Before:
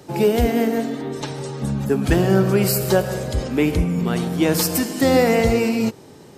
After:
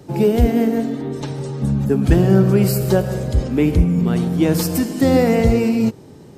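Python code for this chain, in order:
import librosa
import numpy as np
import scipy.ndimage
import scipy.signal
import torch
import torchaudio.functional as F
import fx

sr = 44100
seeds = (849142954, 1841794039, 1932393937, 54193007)

y = fx.low_shelf(x, sr, hz=390.0, db=10.5)
y = F.gain(torch.from_numpy(y), -4.0).numpy()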